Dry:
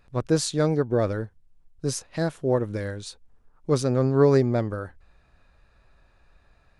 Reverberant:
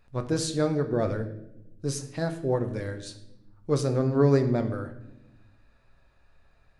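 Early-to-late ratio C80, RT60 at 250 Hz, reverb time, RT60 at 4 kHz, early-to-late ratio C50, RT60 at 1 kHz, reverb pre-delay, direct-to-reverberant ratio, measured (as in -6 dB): 13.5 dB, 1.5 s, 0.85 s, 0.65 s, 11.5 dB, 0.70 s, 7 ms, 6.0 dB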